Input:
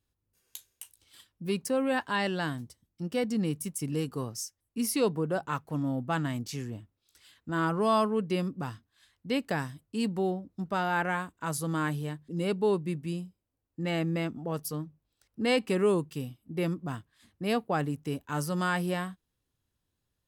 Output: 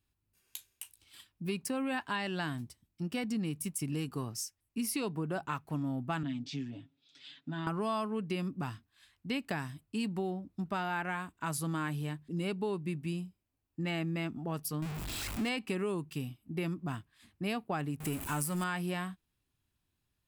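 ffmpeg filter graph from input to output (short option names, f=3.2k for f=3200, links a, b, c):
-filter_complex "[0:a]asettb=1/sr,asplit=3[a][b][c];[a]atrim=end=6.234[d];[b]atrim=start=6.23:end=7.67,asetpts=PTS-STARTPTS,afade=t=in:d=0.004:c=qsin,afade=t=out:st=1.436:d=0.004:c=qsin,aecho=1:1:7.2:0.74,atrim=end_sample=63504,acompressor=threshold=-45dB:ratio=2:attack=3.2:release=140:knee=1:detection=peak,highpass=150,equalizer=f=150:t=q:w=4:g=7,equalizer=f=270:t=q:w=4:g=10,equalizer=f=570:t=q:w=4:g=3,equalizer=f=1.1k:t=q:w=4:g=-6,equalizer=f=3.5k:t=q:w=4:g=9,lowpass=f=6k:w=0.5412,lowpass=f=6k:w=1.3066[e];[c]atrim=start=7.666[f];[d][e]acrossfade=d=0.004:c1=hsin:c2=qsin[g];[g][f]acrossfade=d=0.004:c1=qsin:c2=hsin,asettb=1/sr,asplit=3[h][i][j];[h]atrim=end=14.824[k];[i]atrim=start=14.82:end=15.49,asetpts=PTS-STARTPTS,afade=t=in:d=0.004:c=qsin,afade=t=out:st=0.666:d=0.004:c=qsin,aeval=exprs='val(0)+0.5*0.0237*sgn(val(0))':c=same,equalizer=f=7.6k:w=3.6:g=3.5[l];[j]atrim=start=15.486[m];[k][l]acrossfade=d=0.004:c1=hsin:c2=qsin[n];[n][m]acrossfade=d=0.004:c1=qsin:c2=hsin,asettb=1/sr,asplit=3[o][p][q];[o]atrim=end=18.004[r];[p]atrim=start=18:end=18.64,asetpts=PTS-STARTPTS,afade=t=in:d=0.004:c=qsin,afade=t=out:st=0.636:d=0.004:c=qsin,aeval=exprs='val(0)+0.5*0.015*sgn(val(0))':c=same,highshelf=f=6.5k:t=q:w=1.5:g=8[s];[q]atrim=start=18.636[t];[r][s]acrossfade=d=0.004:c1=hsin:c2=qsin[u];[u][t]acrossfade=d=0.004:c1=qsin:c2=hsin,equalizer=f=500:t=o:w=0.33:g=-9,equalizer=f=2.5k:t=o:w=0.33:g=5,equalizer=f=6.3k:t=o:w=0.33:g=-3,acompressor=threshold=-31dB:ratio=6"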